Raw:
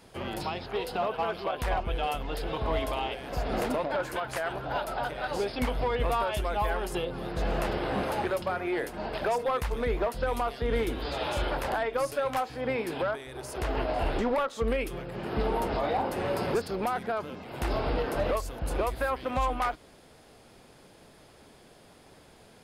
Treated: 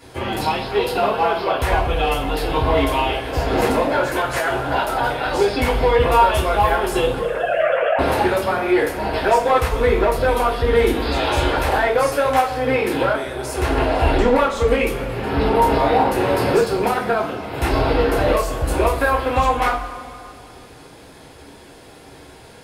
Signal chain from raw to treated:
0:07.19–0:07.99: three sine waves on the formant tracks
coupled-rooms reverb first 0.29 s, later 2.4 s, from −18 dB, DRR −6.5 dB
level +5 dB

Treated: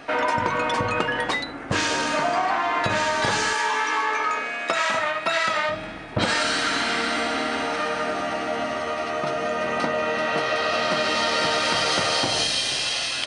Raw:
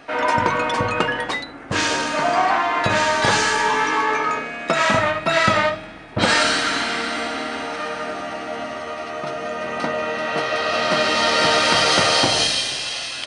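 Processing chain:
0:03.53–0:05.69: high-pass filter 710 Hz 6 dB per octave
downward compressor 4 to 1, threshold −23 dBFS, peak gain reduction 9.5 dB
level +2.5 dB

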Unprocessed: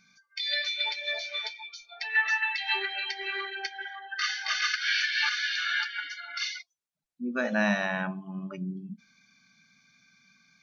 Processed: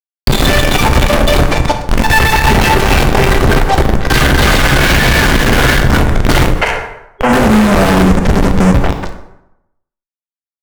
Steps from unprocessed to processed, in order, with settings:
every frequency bin delayed by itself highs early, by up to 181 ms
comparator with hysteresis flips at −34.5 dBFS
reversed playback
upward compression, threshold −46 dBFS
reversed playback
spectral tilt −4.5 dB per octave
on a send: echo through a band-pass that steps 115 ms, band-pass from 790 Hz, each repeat 1.4 octaves, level −7 dB
on the sum: fuzz pedal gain 44 dB, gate −49 dBFS
gain on a spectral selection 0:06.54–0:07.28, 390–3,300 Hz +12 dB
dense smooth reverb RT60 0.84 s, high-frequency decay 0.65×, DRR 5.5 dB
boost into a limiter +11.5 dB
level −1 dB

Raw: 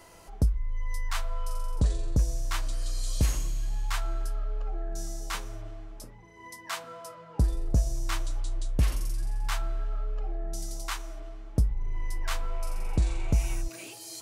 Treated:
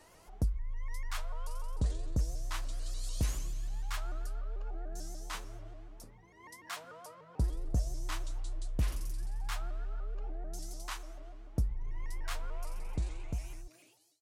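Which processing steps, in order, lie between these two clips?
fade-out on the ending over 1.62 s
pitch modulation by a square or saw wave saw up 6.8 Hz, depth 160 cents
level −7 dB

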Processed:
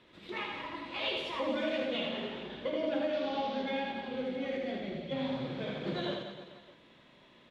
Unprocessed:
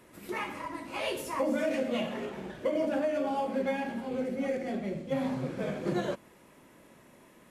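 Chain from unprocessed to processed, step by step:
0:03.13–0:03.63: linear delta modulator 32 kbit/s, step −42.5 dBFS
low-pass with resonance 3,600 Hz, resonance Q 4.7
on a send: reverse bouncing-ball delay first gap 80 ms, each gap 1.2×, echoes 5
on the sum: level −6 dB

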